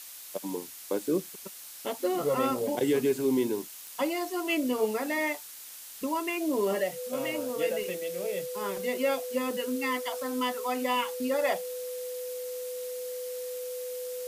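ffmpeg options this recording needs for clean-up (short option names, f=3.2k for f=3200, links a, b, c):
-af "adeclick=t=4,bandreject=f=500:w=30,afftdn=nr=30:nf=-45"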